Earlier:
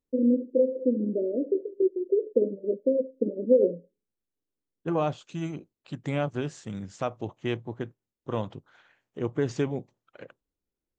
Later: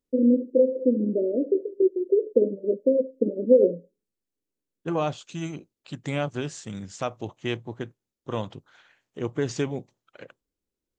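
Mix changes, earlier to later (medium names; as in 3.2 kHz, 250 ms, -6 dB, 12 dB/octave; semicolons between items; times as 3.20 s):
first voice +3.0 dB; master: add treble shelf 2.8 kHz +9 dB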